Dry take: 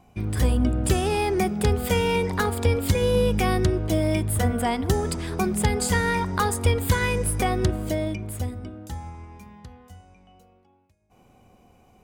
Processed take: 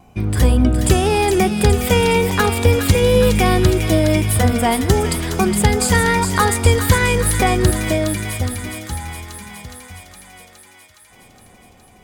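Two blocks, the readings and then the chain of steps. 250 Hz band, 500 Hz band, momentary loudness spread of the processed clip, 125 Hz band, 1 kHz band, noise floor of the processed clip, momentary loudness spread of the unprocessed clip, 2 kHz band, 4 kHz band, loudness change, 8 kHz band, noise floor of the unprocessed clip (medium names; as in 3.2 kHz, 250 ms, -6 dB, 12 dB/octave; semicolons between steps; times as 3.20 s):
+7.5 dB, +7.5 dB, 13 LU, +7.5 dB, +7.5 dB, -48 dBFS, 9 LU, +8.5 dB, +9.0 dB, +7.5 dB, +9.5 dB, -58 dBFS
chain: wow and flutter 22 cents; feedback echo behind a high-pass 415 ms, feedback 71%, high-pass 1.7 kHz, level -6 dB; trim +7.5 dB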